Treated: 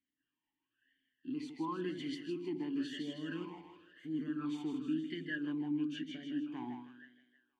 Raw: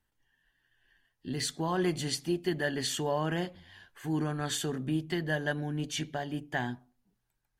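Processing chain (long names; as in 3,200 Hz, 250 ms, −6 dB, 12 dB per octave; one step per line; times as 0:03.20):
on a send: echo with a time of its own for lows and highs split 420 Hz, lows 81 ms, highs 158 ms, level −6 dB
on the sum: formant filter swept between two vowels i-u 0.97 Hz
level +2.5 dB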